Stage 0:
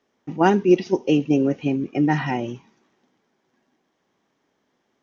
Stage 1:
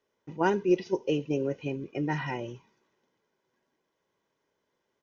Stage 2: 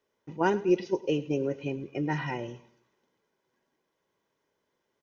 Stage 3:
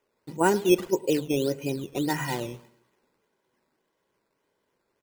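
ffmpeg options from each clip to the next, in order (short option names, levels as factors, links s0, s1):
-af "aecho=1:1:2:0.5,volume=0.376"
-af "aecho=1:1:106|212|318:0.112|0.0438|0.0171"
-af "bandreject=f=50:t=h:w=6,bandreject=f=100:t=h:w=6,bandreject=f=150:t=h:w=6,aresample=11025,aresample=44100,acrusher=samples=10:mix=1:aa=0.000001:lfo=1:lforange=10:lforate=1.7,volume=1.5"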